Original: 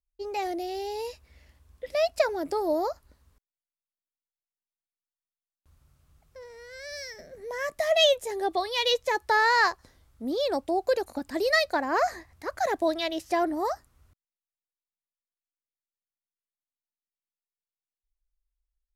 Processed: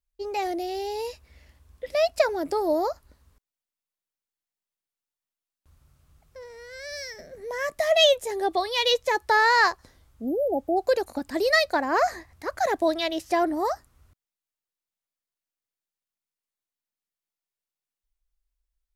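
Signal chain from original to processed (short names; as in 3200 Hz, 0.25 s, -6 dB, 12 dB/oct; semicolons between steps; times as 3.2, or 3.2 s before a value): spectral repair 10.17–10.74, 840–11000 Hz before; gain +2.5 dB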